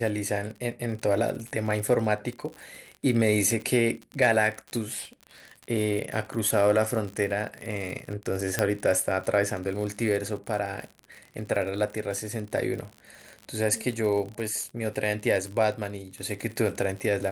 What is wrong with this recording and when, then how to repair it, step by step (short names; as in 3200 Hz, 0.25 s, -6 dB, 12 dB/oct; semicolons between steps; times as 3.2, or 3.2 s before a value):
crackle 54/s -33 dBFS
8.59 pop -8 dBFS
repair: de-click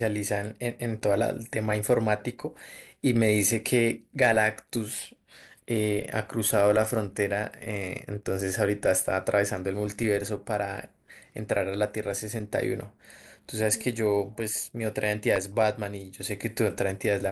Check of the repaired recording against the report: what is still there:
none